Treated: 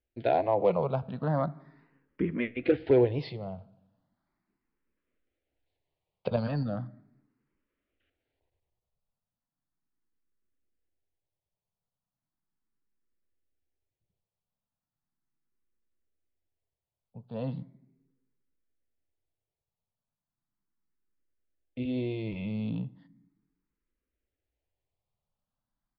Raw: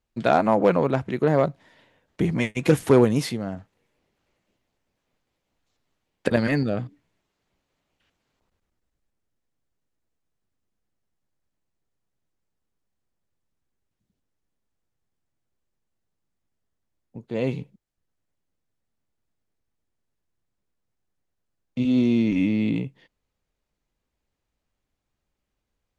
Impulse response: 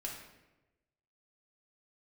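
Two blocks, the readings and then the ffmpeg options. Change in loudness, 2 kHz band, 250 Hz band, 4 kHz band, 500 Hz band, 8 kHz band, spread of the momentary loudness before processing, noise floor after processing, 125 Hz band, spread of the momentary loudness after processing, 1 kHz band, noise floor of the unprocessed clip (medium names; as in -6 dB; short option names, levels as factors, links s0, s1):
-7.5 dB, -11.5 dB, -10.5 dB, -11.0 dB, -6.0 dB, no reading, 14 LU, under -85 dBFS, -6.5 dB, 17 LU, -7.0 dB, -81 dBFS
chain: -filter_complex "[0:a]aresample=11025,aresample=44100,highshelf=f=3500:g=-10.5,asplit=2[s0][s1];[1:a]atrim=start_sample=2205[s2];[s1][s2]afir=irnorm=-1:irlink=0,volume=0.178[s3];[s0][s3]amix=inputs=2:normalize=0,asplit=2[s4][s5];[s5]afreqshift=0.37[s6];[s4][s6]amix=inputs=2:normalize=1,volume=0.562"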